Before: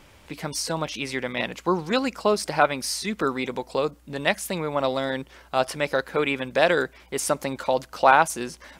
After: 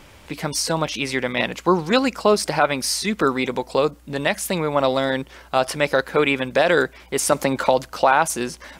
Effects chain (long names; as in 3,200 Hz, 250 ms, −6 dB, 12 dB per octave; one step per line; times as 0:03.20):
boost into a limiter +9 dB
0:07.32–0:07.89: multiband upward and downward compressor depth 70%
level −3.5 dB